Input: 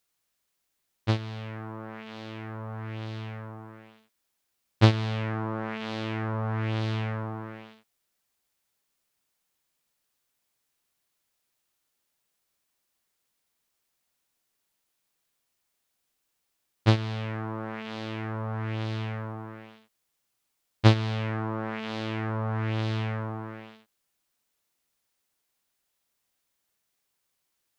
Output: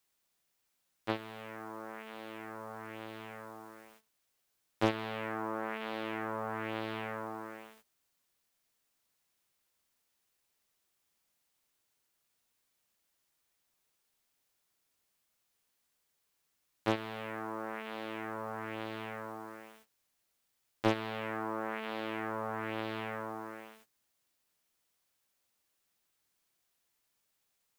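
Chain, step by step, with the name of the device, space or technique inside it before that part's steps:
aircraft radio (band-pass filter 320–2,700 Hz; hard clipping −13 dBFS, distortion −14 dB; white noise bed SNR 24 dB; noise gate −57 dBFS, range −13 dB)
level −2 dB

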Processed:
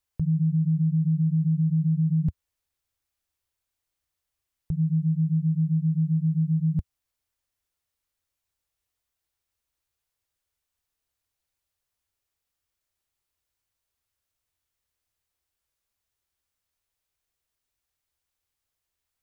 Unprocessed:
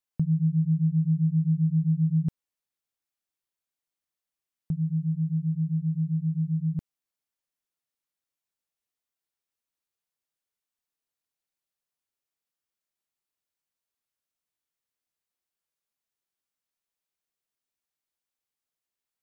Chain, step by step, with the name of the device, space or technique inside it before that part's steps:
car stereo with a boomy subwoofer (low shelf with overshoot 120 Hz +11 dB, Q 1.5; brickwall limiter −23.5 dBFS, peak gain reduction 11 dB)
level +5.5 dB

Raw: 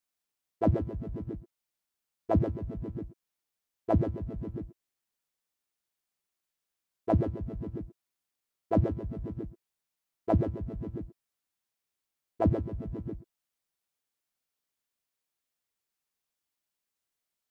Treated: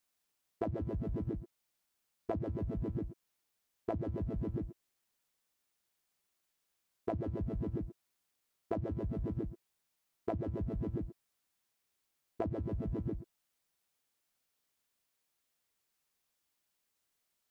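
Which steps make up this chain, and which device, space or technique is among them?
serial compression, leveller first (downward compressor, threshold −28 dBFS, peak gain reduction 8.5 dB; downward compressor, threshold −38 dBFS, peak gain reduction 11.5 dB)
level +4.5 dB

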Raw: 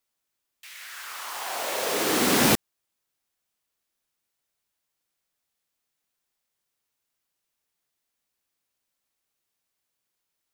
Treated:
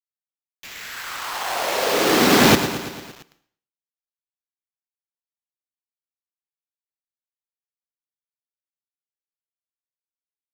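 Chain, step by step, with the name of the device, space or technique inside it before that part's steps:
low-pass filter 6,000 Hz 24 dB per octave
repeating echo 113 ms, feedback 59%, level −10.5 dB
early 8-bit sampler (sample-rate reduction 9,500 Hz, jitter 0%; bit reduction 8 bits)
dense smooth reverb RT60 0.51 s, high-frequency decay 0.95×, pre-delay 95 ms, DRR 18.5 dB
level +7 dB

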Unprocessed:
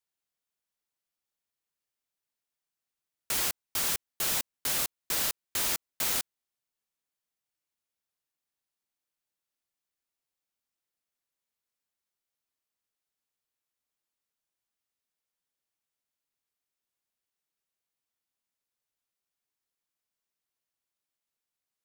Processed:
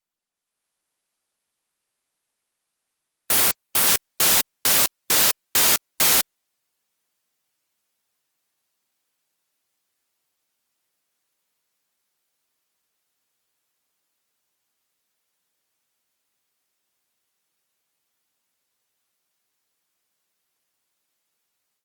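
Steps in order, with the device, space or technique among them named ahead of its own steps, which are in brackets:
noise-suppressed video call (high-pass filter 120 Hz 6 dB per octave; gate on every frequency bin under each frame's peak −25 dB strong; automatic gain control gain up to 14 dB; level −1 dB; Opus 32 kbit/s 48,000 Hz)

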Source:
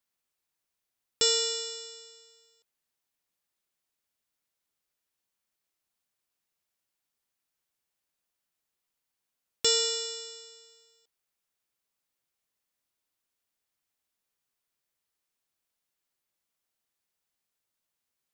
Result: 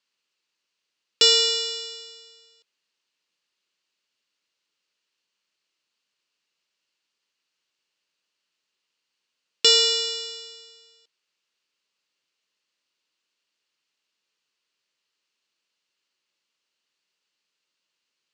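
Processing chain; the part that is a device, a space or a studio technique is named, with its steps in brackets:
television speaker (loudspeaker in its box 220–6,900 Hz, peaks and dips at 250 Hz −3 dB, 730 Hz −9 dB, 2,800 Hz +8 dB, 4,400 Hz +6 dB)
level +6 dB

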